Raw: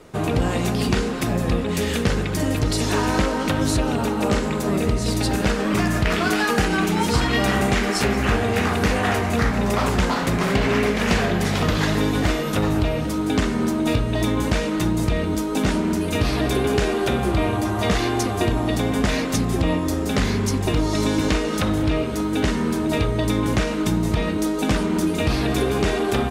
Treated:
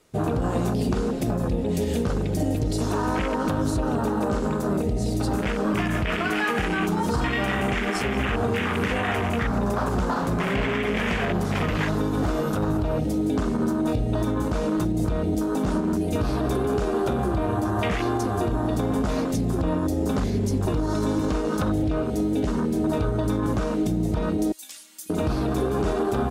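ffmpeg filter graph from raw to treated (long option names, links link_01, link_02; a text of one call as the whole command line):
ffmpeg -i in.wav -filter_complex "[0:a]asettb=1/sr,asplit=3[link_01][link_02][link_03];[link_01]atrim=end=8.474[link_04];[link_02]atrim=start=8.47:end=8.92,asetpts=PTS-STARTPTS,afade=type=in:duration=0.004:curve=qsin,afade=type=out:start_time=0.446:duration=0.004:curve=qsin,highpass=frequency=80:width=0.5412,highpass=frequency=80:width=1.3066,equalizer=frequency=710:width=6.8:gain=-9.5[link_05];[link_03]atrim=start=8.916[link_06];[link_04][link_05]acrossfade=duration=0.004:curve1=hsin:curve2=qsin[link_07];[link_07][link_06]acrossfade=duration=0.004:curve1=qsin:curve2=hsin,asettb=1/sr,asplit=3[link_08][link_09][link_10];[link_08]atrim=end=24.524[link_11];[link_09]atrim=start=24.52:end=25.1,asetpts=PTS-STARTPTS,afade=type=in:duration=0.004:curve=qsin,afade=type=out:start_time=0.576:duration=0.004:curve=qsin,aderivative,aecho=1:1:3.6:0.73,atrim=end_sample=25578,acrusher=bits=7:mode=log:mix=0:aa=0.000001[link_12];[link_10]atrim=start=25.096[link_13];[link_11][link_12]acrossfade=duration=0.004:curve1=hsin:curve2=qsin[link_14];[link_14][link_13]acrossfade=duration=0.004:curve1=qsin:curve2=hsin,afwtdn=0.0562,highshelf=frequency=2800:gain=11.5,alimiter=limit=-15.5dB:level=0:latency=1:release=77" out.wav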